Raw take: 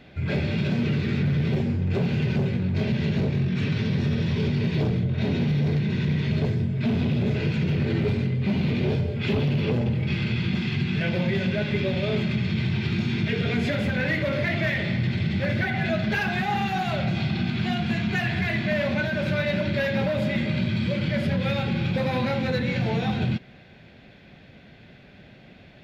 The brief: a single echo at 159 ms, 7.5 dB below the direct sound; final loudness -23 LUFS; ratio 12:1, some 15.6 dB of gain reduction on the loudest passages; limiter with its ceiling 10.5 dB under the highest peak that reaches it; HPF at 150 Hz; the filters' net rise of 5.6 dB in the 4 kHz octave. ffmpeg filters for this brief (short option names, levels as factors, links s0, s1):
-af "highpass=150,equalizer=f=4000:t=o:g=7,acompressor=threshold=0.0126:ratio=12,alimiter=level_in=5.31:limit=0.0631:level=0:latency=1,volume=0.188,aecho=1:1:159:0.422,volume=13.3"